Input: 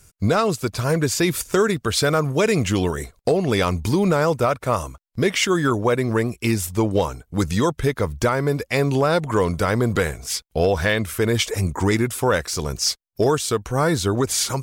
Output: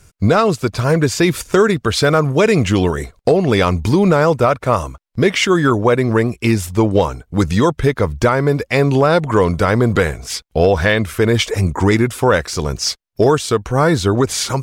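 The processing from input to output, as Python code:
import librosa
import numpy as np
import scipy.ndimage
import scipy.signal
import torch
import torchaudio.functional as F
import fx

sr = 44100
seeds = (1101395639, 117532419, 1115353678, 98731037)

y = fx.high_shelf(x, sr, hz=6900.0, db=-11.0)
y = y * 10.0 ** (6.0 / 20.0)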